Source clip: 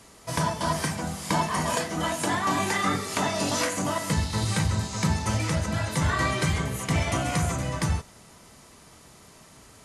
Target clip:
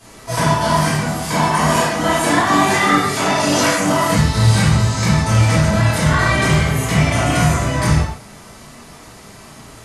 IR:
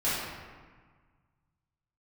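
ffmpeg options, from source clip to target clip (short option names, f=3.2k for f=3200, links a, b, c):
-filter_complex "[0:a]alimiter=limit=-16dB:level=0:latency=1:release=356[a];[1:a]atrim=start_sample=2205,afade=t=out:st=0.23:d=0.01,atrim=end_sample=10584[b];[a][b]afir=irnorm=-1:irlink=0,volume=2.5dB"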